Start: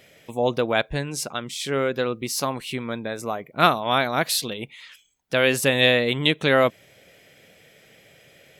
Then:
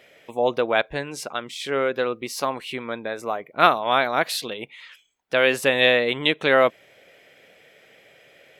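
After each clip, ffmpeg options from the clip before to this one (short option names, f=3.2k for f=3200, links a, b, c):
-af "bass=f=250:g=-12,treble=f=4k:g=-9,volume=2dB"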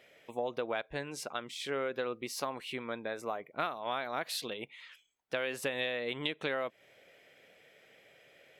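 -af "acompressor=threshold=-22dB:ratio=16,volume=-8dB"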